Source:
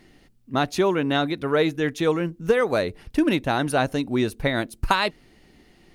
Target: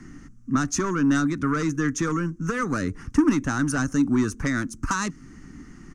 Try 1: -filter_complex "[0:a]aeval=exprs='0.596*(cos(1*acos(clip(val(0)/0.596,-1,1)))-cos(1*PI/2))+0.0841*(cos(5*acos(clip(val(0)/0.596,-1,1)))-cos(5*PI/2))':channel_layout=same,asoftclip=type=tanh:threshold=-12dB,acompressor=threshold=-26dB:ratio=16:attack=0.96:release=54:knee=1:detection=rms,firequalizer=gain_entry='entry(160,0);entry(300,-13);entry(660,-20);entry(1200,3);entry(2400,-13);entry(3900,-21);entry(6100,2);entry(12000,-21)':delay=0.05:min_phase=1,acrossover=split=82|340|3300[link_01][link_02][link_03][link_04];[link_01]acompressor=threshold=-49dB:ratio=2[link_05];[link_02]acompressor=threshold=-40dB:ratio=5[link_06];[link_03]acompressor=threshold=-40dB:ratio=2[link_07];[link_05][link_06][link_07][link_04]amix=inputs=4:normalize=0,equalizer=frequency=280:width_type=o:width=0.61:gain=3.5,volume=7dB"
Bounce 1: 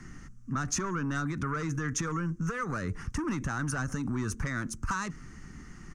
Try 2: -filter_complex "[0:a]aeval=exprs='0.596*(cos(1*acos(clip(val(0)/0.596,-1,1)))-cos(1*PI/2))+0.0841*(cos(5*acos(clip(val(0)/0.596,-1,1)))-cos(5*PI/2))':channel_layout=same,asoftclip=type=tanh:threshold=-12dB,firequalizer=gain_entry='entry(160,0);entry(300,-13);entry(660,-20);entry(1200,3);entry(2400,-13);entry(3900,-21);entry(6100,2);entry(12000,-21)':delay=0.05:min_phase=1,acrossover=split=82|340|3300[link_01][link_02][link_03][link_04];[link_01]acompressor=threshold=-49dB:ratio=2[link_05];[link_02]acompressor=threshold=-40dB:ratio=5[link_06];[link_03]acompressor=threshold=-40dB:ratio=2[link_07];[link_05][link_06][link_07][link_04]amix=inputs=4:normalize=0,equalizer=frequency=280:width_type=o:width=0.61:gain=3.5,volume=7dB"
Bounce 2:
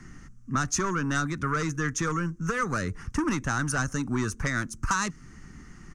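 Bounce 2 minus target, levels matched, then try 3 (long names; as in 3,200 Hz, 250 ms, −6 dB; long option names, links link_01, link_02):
250 Hz band −4.0 dB
-filter_complex "[0:a]aeval=exprs='0.596*(cos(1*acos(clip(val(0)/0.596,-1,1)))-cos(1*PI/2))+0.0841*(cos(5*acos(clip(val(0)/0.596,-1,1)))-cos(5*PI/2))':channel_layout=same,asoftclip=type=tanh:threshold=-12dB,firequalizer=gain_entry='entry(160,0);entry(300,-13);entry(660,-20);entry(1200,3);entry(2400,-13);entry(3900,-21);entry(6100,2);entry(12000,-21)':delay=0.05:min_phase=1,acrossover=split=82|340|3300[link_01][link_02][link_03][link_04];[link_01]acompressor=threshold=-49dB:ratio=2[link_05];[link_02]acompressor=threshold=-40dB:ratio=5[link_06];[link_03]acompressor=threshold=-40dB:ratio=2[link_07];[link_05][link_06][link_07][link_04]amix=inputs=4:normalize=0,equalizer=frequency=280:width_type=o:width=0.61:gain=15,volume=7dB"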